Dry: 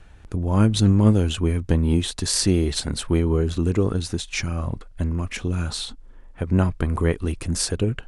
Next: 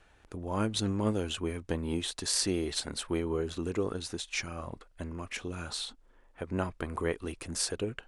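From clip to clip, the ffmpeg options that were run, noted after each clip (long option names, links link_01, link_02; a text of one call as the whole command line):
ffmpeg -i in.wav -af "bass=frequency=250:gain=-12,treble=frequency=4000:gain=-1,volume=-6dB" out.wav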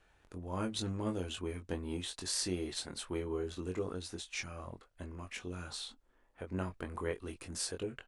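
ffmpeg -i in.wav -filter_complex "[0:a]asplit=2[link_01][link_02];[link_02]adelay=22,volume=-5.5dB[link_03];[link_01][link_03]amix=inputs=2:normalize=0,volume=-7dB" out.wav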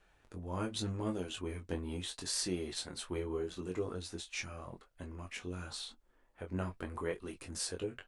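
ffmpeg -i in.wav -af "flanger=delay=4.7:depth=7.8:regen=-44:speed=0.83:shape=triangular,volume=3.5dB" out.wav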